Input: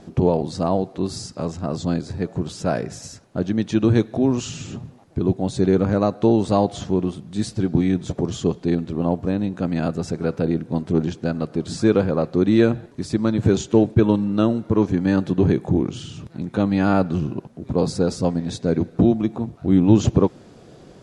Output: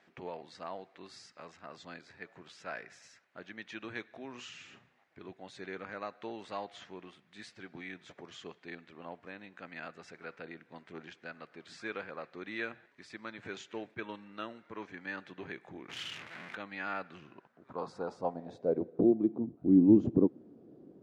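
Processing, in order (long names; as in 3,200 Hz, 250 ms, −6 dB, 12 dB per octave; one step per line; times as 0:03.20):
0:15.89–0:16.55: power curve on the samples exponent 0.35
band-pass filter sweep 2,000 Hz → 290 Hz, 0:17.23–0:19.44
0:04.30–0:05.26: flutter between parallel walls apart 7 metres, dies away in 0.22 s
level −4 dB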